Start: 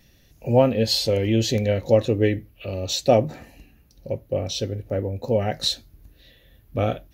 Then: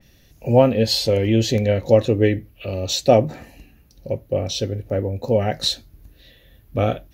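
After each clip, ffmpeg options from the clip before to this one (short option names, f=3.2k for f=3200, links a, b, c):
-af "adynamicequalizer=threshold=0.0141:dfrequency=2900:dqfactor=0.7:tfrequency=2900:tqfactor=0.7:attack=5:release=100:ratio=0.375:range=1.5:mode=cutabove:tftype=highshelf,volume=3dB"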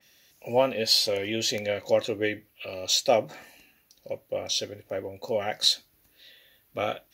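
-af "highpass=f=1.3k:p=1"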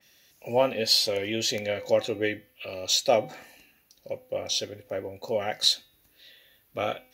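-af "bandreject=f=254.1:t=h:w=4,bandreject=f=508.2:t=h:w=4,bandreject=f=762.3:t=h:w=4,bandreject=f=1.0164k:t=h:w=4,bandreject=f=1.2705k:t=h:w=4,bandreject=f=1.5246k:t=h:w=4,bandreject=f=1.7787k:t=h:w=4,bandreject=f=2.0328k:t=h:w=4,bandreject=f=2.2869k:t=h:w=4,bandreject=f=2.541k:t=h:w=4,bandreject=f=2.7951k:t=h:w=4,bandreject=f=3.0492k:t=h:w=4,bandreject=f=3.3033k:t=h:w=4,bandreject=f=3.5574k:t=h:w=4,bandreject=f=3.8115k:t=h:w=4"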